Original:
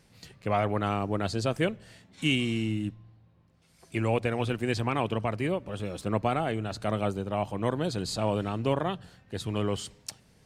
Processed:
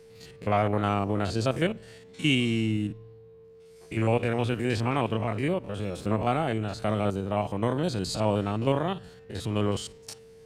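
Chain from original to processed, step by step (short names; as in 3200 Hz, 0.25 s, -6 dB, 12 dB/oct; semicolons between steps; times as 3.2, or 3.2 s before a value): stepped spectrum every 50 ms; whine 450 Hz -52 dBFS; gain +3 dB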